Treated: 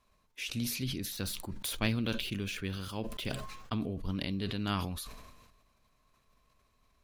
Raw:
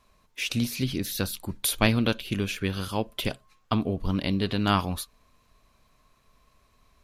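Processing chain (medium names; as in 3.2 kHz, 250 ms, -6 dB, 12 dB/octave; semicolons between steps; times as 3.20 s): 1.12–3.81 s: median filter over 3 samples; dynamic bell 790 Hz, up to -5 dB, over -39 dBFS, Q 0.81; decay stretcher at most 43 dB/s; trim -8.5 dB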